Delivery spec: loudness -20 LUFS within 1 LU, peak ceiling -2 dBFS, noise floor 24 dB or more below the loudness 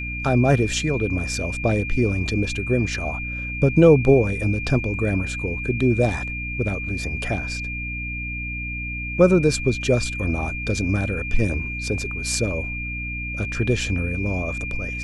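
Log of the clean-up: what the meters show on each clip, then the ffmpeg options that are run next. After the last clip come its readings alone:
hum 60 Hz; harmonics up to 300 Hz; hum level -29 dBFS; steady tone 2400 Hz; tone level -29 dBFS; loudness -22.5 LUFS; peak -2.5 dBFS; loudness target -20.0 LUFS
-> -af "bandreject=f=60:t=h:w=6,bandreject=f=120:t=h:w=6,bandreject=f=180:t=h:w=6,bandreject=f=240:t=h:w=6,bandreject=f=300:t=h:w=6"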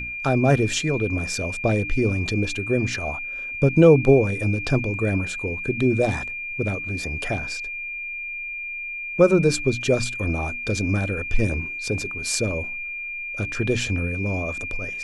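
hum none; steady tone 2400 Hz; tone level -29 dBFS
-> -af "bandreject=f=2.4k:w=30"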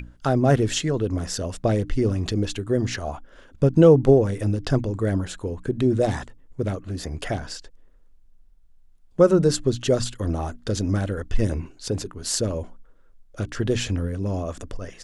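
steady tone none; loudness -23.5 LUFS; peak -4.0 dBFS; loudness target -20.0 LUFS
-> -af "volume=3.5dB,alimiter=limit=-2dB:level=0:latency=1"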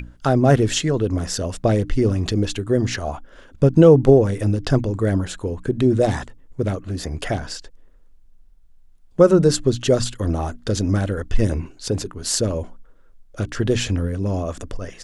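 loudness -20.0 LUFS; peak -2.0 dBFS; noise floor -49 dBFS

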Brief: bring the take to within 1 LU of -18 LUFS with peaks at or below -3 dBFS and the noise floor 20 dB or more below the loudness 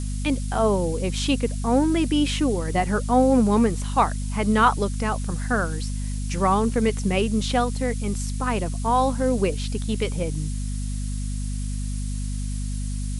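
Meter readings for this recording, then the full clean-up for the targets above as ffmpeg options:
hum 50 Hz; harmonics up to 250 Hz; hum level -25 dBFS; noise floor -28 dBFS; noise floor target -44 dBFS; loudness -24.0 LUFS; peak -5.5 dBFS; loudness target -18.0 LUFS
-> -af "bandreject=f=50:t=h:w=6,bandreject=f=100:t=h:w=6,bandreject=f=150:t=h:w=6,bandreject=f=200:t=h:w=6,bandreject=f=250:t=h:w=6"
-af "afftdn=nr=16:nf=-28"
-af "volume=6dB,alimiter=limit=-3dB:level=0:latency=1"

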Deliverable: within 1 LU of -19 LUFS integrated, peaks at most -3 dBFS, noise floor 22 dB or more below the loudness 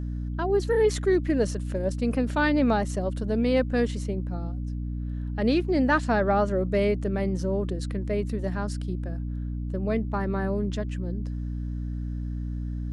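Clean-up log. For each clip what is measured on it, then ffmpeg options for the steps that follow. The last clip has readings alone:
hum 60 Hz; harmonics up to 300 Hz; hum level -28 dBFS; loudness -27.0 LUFS; peak -11.5 dBFS; loudness target -19.0 LUFS
-> -af "bandreject=f=60:t=h:w=4,bandreject=f=120:t=h:w=4,bandreject=f=180:t=h:w=4,bandreject=f=240:t=h:w=4,bandreject=f=300:t=h:w=4"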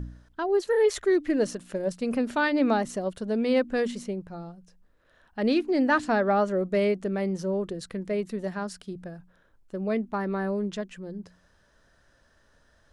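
hum none; loudness -27.0 LUFS; peak -12.0 dBFS; loudness target -19.0 LUFS
-> -af "volume=8dB"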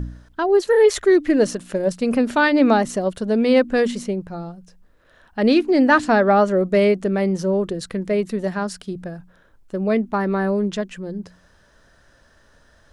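loudness -19.0 LUFS; peak -4.0 dBFS; noise floor -56 dBFS

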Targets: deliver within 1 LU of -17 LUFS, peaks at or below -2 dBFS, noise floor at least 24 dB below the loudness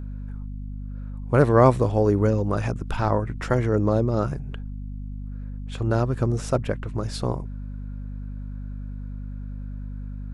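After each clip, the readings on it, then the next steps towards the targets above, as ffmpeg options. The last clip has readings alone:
hum 50 Hz; harmonics up to 250 Hz; hum level -31 dBFS; loudness -23.0 LUFS; peak -3.5 dBFS; loudness target -17.0 LUFS
-> -af "bandreject=f=50:t=h:w=6,bandreject=f=100:t=h:w=6,bandreject=f=150:t=h:w=6,bandreject=f=200:t=h:w=6,bandreject=f=250:t=h:w=6"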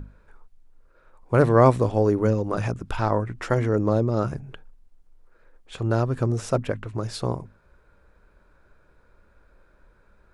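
hum none; loudness -23.5 LUFS; peak -4.5 dBFS; loudness target -17.0 LUFS
-> -af "volume=6.5dB,alimiter=limit=-2dB:level=0:latency=1"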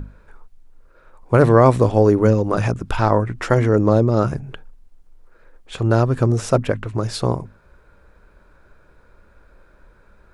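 loudness -17.5 LUFS; peak -2.0 dBFS; noise floor -53 dBFS

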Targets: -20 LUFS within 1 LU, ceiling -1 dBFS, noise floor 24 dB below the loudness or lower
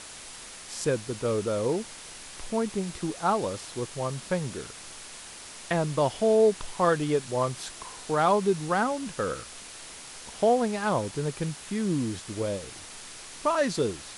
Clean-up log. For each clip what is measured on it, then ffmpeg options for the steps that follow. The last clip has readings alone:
noise floor -44 dBFS; noise floor target -52 dBFS; loudness -28.0 LUFS; peak -10.5 dBFS; loudness target -20.0 LUFS
-> -af "afftdn=nr=8:nf=-44"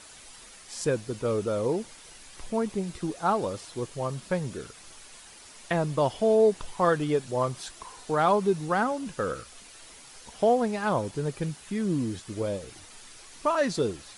noise floor -49 dBFS; noise floor target -52 dBFS
-> -af "afftdn=nr=6:nf=-49"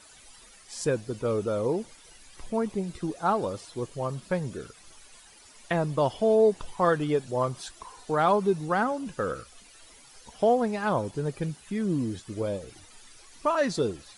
noise floor -53 dBFS; loudness -28.0 LUFS; peak -10.5 dBFS; loudness target -20.0 LUFS
-> -af "volume=8dB"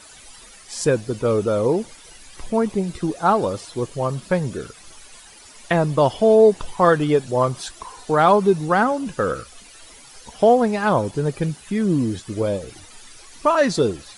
loudness -20.0 LUFS; peak -2.5 dBFS; noise floor -45 dBFS

